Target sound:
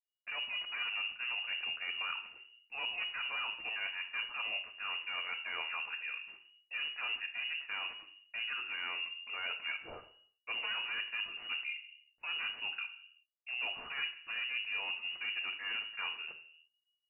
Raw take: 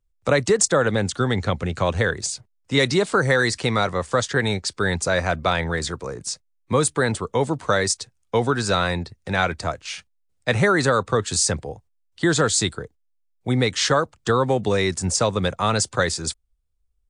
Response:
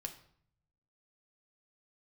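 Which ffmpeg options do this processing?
-filter_complex "[0:a]aeval=exprs='clip(val(0),-1,0.0794)':channel_layout=same,areverse,acompressor=threshold=-29dB:ratio=10,areverse,agate=range=-33dB:threshold=-54dB:ratio=3:detection=peak[link_01];[1:a]atrim=start_sample=2205,afade=type=out:start_time=0.44:duration=0.01,atrim=end_sample=19845[link_02];[link_01][link_02]afir=irnorm=-1:irlink=0,lowpass=frequency=2500:width_type=q:width=0.5098,lowpass=frequency=2500:width_type=q:width=0.6013,lowpass=frequency=2500:width_type=q:width=0.9,lowpass=frequency=2500:width_type=q:width=2.563,afreqshift=-2900,volume=-4.5dB"

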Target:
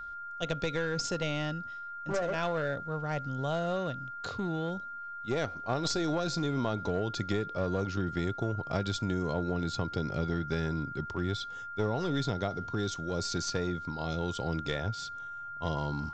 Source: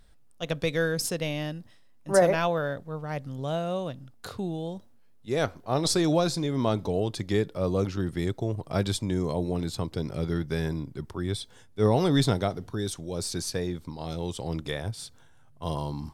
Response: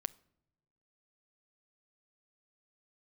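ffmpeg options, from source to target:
-af "acompressor=threshold=-26dB:ratio=12,aresample=16000,aeval=exprs='clip(val(0),-1,0.0299)':channel_layout=same,aresample=44100,aeval=exprs='val(0)+0.0112*sin(2*PI*1400*n/s)':channel_layout=same"

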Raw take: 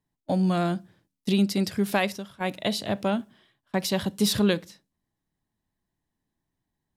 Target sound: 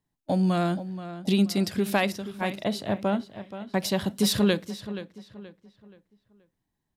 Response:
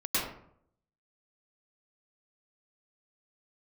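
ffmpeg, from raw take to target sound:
-filter_complex "[0:a]asplit=2[link_01][link_02];[link_02]adelay=477,lowpass=frequency=3600:poles=1,volume=-12.5dB,asplit=2[link_03][link_04];[link_04]adelay=477,lowpass=frequency=3600:poles=1,volume=0.36,asplit=2[link_05][link_06];[link_06]adelay=477,lowpass=frequency=3600:poles=1,volume=0.36,asplit=2[link_07][link_08];[link_08]adelay=477,lowpass=frequency=3600:poles=1,volume=0.36[link_09];[link_01][link_03][link_05][link_07][link_09]amix=inputs=5:normalize=0,asettb=1/sr,asplit=3[link_10][link_11][link_12];[link_10]atrim=end=2.644[link_13];[link_11]atrim=start=2.64:end=4.05,asetpts=PTS-STARTPTS,afade=type=in:duration=0.004:curve=qsin,afade=type=out:start_time=1.406:duration=0.004:curve=qsin,adynamicequalizer=threshold=0.00631:dfrequency=2100:dqfactor=0.7:tfrequency=2100:tqfactor=0.7:attack=5:release=100:ratio=0.375:range=3:mode=cutabove:tftype=highshelf[link_14];[link_12]atrim=start=4.046[link_15];[link_13][link_14]acrossfade=duration=0.004:curve1=hsin:curve2=qsin[link_16];[link_16][link_15]acrossfade=duration=0.004:curve1=qsin:curve2=hsin"

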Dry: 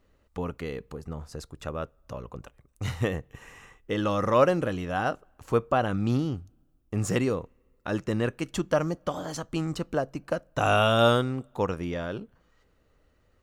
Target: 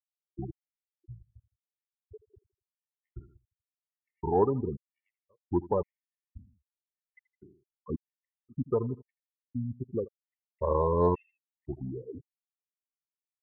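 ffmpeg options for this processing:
ffmpeg -i in.wav -filter_complex "[0:a]asetrate=33038,aresample=44100,atempo=1.33484,afftfilt=real='re*gte(hypot(re,im),0.141)':imag='im*gte(hypot(re,im),0.141)':win_size=1024:overlap=0.75,acontrast=29,asplit=2[link_01][link_02];[link_02]aecho=0:1:81|162|243:0.112|0.0404|0.0145[link_03];[link_01][link_03]amix=inputs=2:normalize=0,afftfilt=real='re*gt(sin(2*PI*0.94*pts/sr)*(1-2*mod(floor(b*sr/1024/1800),2)),0)':imag='im*gt(sin(2*PI*0.94*pts/sr)*(1-2*mod(floor(b*sr/1024/1800),2)),0)':win_size=1024:overlap=0.75,volume=-8.5dB" out.wav

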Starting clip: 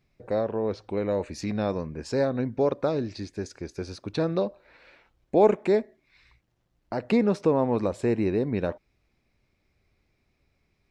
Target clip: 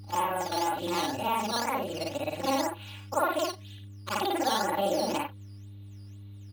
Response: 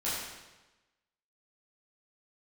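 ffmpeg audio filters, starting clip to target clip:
-af "afftfilt=real='re':imag='-im':win_size=8192:overlap=0.75,aeval=exprs='val(0)+0.00112*(sin(2*PI*60*n/s)+sin(2*PI*2*60*n/s)/2+sin(2*PI*3*60*n/s)/3+sin(2*PI*4*60*n/s)/4+sin(2*PI*5*60*n/s)/5)':channel_layout=same,acompressor=threshold=-38dB:ratio=2.5,lowpass=2300,equalizer=frequency=60:width_type=o:width=0.42:gain=12,acrusher=samples=10:mix=1:aa=0.000001:lfo=1:lforange=10:lforate=1.2,equalizer=frequency=1800:width_type=o:width=1:gain=10.5,bandreject=frequency=50:width_type=h:width=6,bandreject=frequency=100:width_type=h:width=6,bandreject=frequency=150:width_type=h:width=6,bandreject=frequency=200:width_type=h:width=6,bandreject=frequency=250:width_type=h:width=6,bandreject=frequency=300:width_type=h:width=6,aecho=1:1:5.9:0.72,asetrate=73647,aresample=44100,volume=7dB"

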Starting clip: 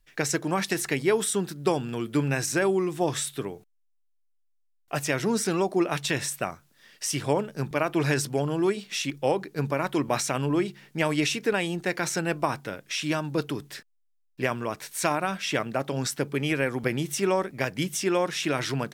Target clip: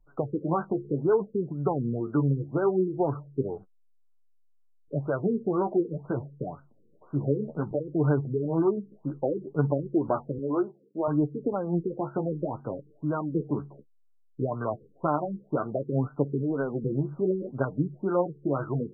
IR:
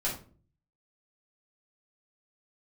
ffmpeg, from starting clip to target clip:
-filter_complex "[0:a]asettb=1/sr,asplit=3[link_01][link_02][link_03];[link_01]atrim=end=10.384[link_04];[link_02]atrim=start=10.38:end=11.08,asetpts=PTS-STARTPTS,afade=type=in:duration=0.004:curve=qsin,afade=type=out:start_time=0.696:duration=0.004:curve=qsin,highpass=370[link_05];[link_03]atrim=start=11.076[link_06];[link_04][link_05]acrossfade=duration=0.004:curve1=hsin:curve2=qsin[link_07];[link_07][link_06]acrossfade=duration=0.004:curve1=qsin:curve2=hsin,acompressor=threshold=-28dB:ratio=2,flanger=delay=6.7:depth=7.7:regen=29:speed=0.62:shape=sinusoidal,afftfilt=real='re*lt(b*sr/1024,480*pow(1600/480,0.5+0.5*sin(2*PI*2*pts/sr)))':imag='im*lt(b*sr/1024,480*pow(1600/480,0.5+0.5*sin(2*PI*2*pts/sr)))':win_size=1024:overlap=0.75,volume=7.5dB"

